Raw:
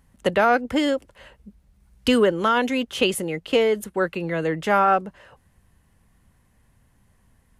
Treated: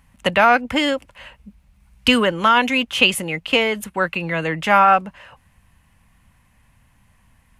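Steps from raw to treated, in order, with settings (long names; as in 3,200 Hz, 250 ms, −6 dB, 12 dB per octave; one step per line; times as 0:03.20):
graphic EQ with 15 bands 400 Hz −9 dB, 1,000 Hz +4 dB, 2,500 Hz +8 dB
level +3.5 dB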